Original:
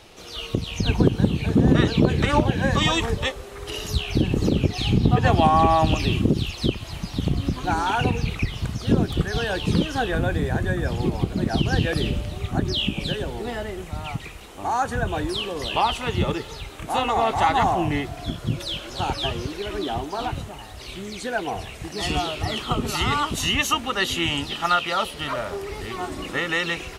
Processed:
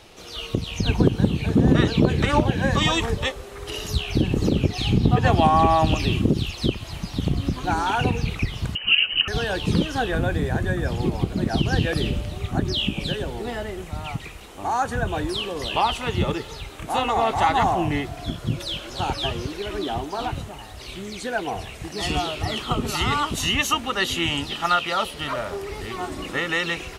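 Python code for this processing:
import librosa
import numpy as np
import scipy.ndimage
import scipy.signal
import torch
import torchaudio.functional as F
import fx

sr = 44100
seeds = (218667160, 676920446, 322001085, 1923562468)

y = fx.freq_invert(x, sr, carrier_hz=3000, at=(8.75, 9.28))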